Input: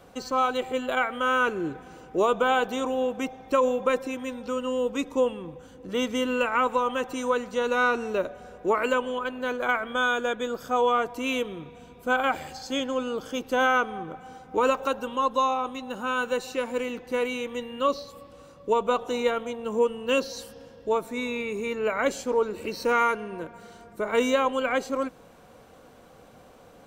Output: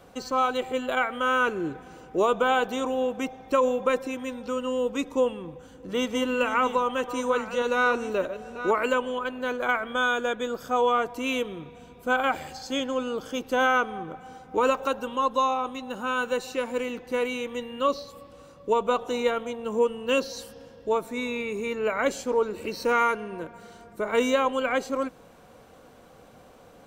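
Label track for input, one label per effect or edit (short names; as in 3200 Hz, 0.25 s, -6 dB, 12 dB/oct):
5.070000	8.710000	reverse delay 0.637 s, level -11 dB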